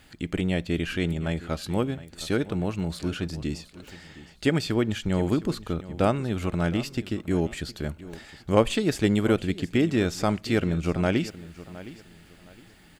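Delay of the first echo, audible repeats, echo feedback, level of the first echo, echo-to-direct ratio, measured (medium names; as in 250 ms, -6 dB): 714 ms, 2, 27%, -17.0 dB, -16.5 dB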